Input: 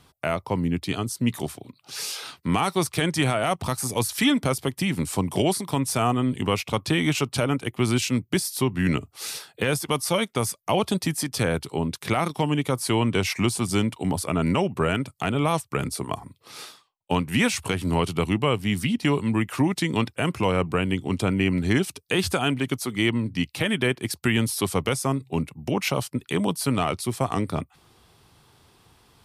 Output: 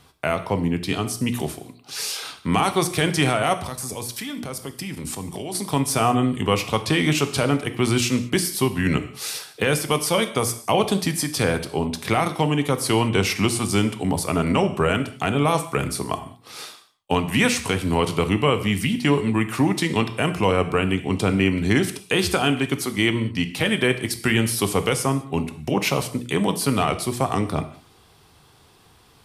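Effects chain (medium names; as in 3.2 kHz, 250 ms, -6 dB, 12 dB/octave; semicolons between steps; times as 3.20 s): hum notches 60/120/180/240/300/360 Hz; 3.61–5.55 s: level held to a coarse grid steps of 17 dB; gated-style reverb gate 230 ms falling, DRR 8.5 dB; trim +3 dB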